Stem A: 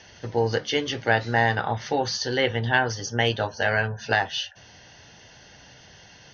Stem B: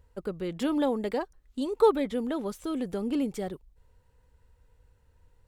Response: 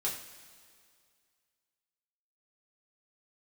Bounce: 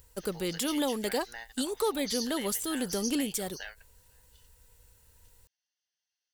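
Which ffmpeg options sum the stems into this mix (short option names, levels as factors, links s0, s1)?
-filter_complex "[0:a]acompressor=threshold=0.0562:ratio=6,aderivative,acontrast=87,volume=0.473[s0];[1:a]highshelf=f=4000:g=6,crystalizer=i=4.5:c=0,volume=0.944,asplit=2[s1][s2];[s2]apad=whole_len=279445[s3];[s0][s3]sidechaingate=range=0.0224:threshold=0.00224:ratio=16:detection=peak[s4];[s4][s1]amix=inputs=2:normalize=0,alimiter=limit=0.112:level=0:latency=1:release=264"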